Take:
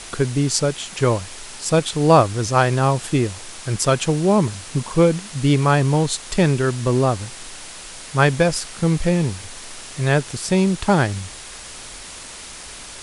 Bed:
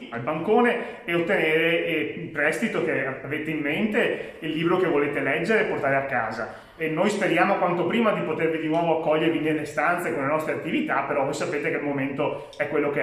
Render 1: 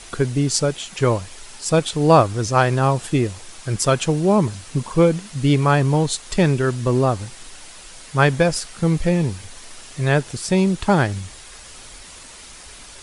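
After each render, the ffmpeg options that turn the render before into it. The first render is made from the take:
-af "afftdn=nr=6:nf=-37"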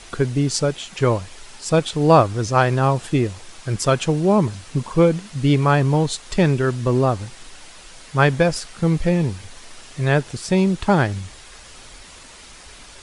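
-af "highshelf=f=9.8k:g=-11.5"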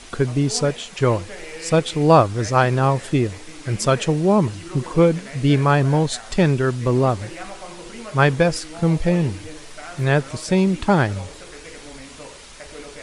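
-filter_complex "[1:a]volume=-15dB[a];[0:a][a]amix=inputs=2:normalize=0"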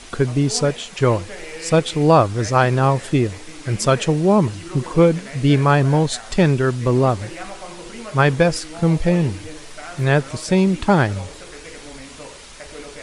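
-af "volume=1.5dB,alimiter=limit=-3dB:level=0:latency=1"

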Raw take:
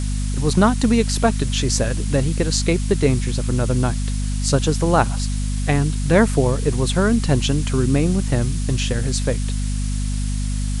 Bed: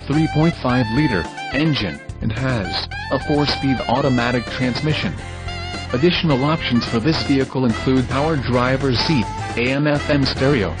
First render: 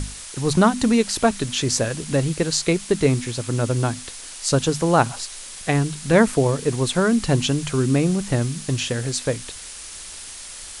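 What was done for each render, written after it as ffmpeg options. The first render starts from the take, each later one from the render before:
-af "bandreject=f=50:t=h:w=6,bandreject=f=100:t=h:w=6,bandreject=f=150:t=h:w=6,bandreject=f=200:t=h:w=6,bandreject=f=250:t=h:w=6"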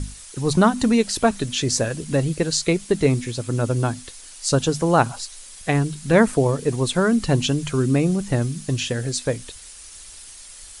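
-af "afftdn=nr=8:nf=-37"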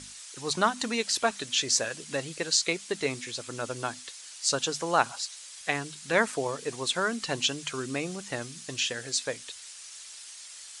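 -af "highpass=f=1.5k:p=1,equalizer=f=10k:t=o:w=0.4:g=-9.5"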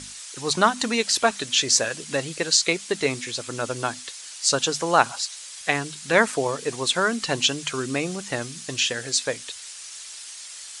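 -af "volume=6dB,alimiter=limit=-1dB:level=0:latency=1"

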